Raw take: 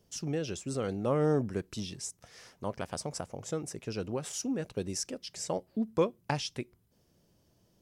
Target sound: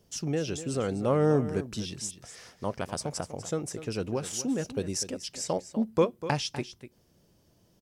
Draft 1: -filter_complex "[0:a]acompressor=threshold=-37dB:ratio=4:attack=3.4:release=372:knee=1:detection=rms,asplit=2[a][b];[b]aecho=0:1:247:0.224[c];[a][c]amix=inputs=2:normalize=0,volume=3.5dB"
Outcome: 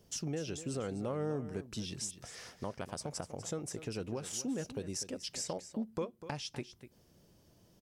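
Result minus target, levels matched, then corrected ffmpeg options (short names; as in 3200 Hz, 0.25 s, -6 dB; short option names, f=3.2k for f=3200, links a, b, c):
compressor: peak gain reduction +14.5 dB
-filter_complex "[0:a]asplit=2[a][b];[b]aecho=0:1:247:0.224[c];[a][c]amix=inputs=2:normalize=0,volume=3.5dB"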